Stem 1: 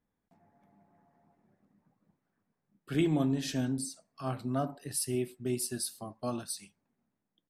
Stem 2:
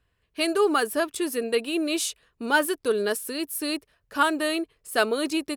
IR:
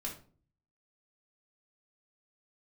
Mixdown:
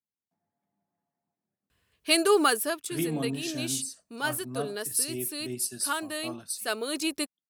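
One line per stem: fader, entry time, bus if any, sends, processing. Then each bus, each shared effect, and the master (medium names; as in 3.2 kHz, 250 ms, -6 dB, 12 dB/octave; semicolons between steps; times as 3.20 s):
-5.0 dB, 0.00 s, no send, three bands expanded up and down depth 40%
-0.5 dB, 1.70 s, no send, auto duck -10 dB, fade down 0.45 s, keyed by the first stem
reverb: none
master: high-pass 67 Hz; treble shelf 3.2 kHz +9.5 dB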